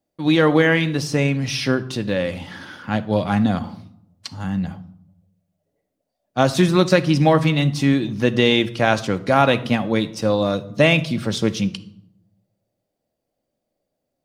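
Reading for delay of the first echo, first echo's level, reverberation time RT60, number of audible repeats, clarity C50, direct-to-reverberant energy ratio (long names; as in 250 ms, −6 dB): no echo audible, no echo audible, 0.75 s, no echo audible, 16.5 dB, 10.0 dB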